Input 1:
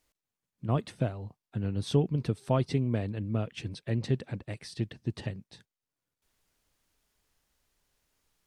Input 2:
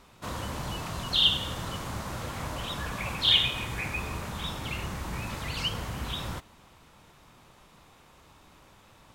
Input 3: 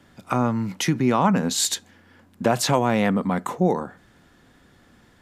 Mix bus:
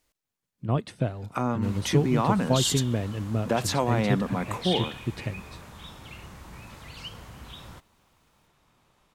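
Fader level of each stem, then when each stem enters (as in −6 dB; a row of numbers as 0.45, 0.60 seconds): +2.5, −9.5, −5.5 decibels; 0.00, 1.40, 1.05 seconds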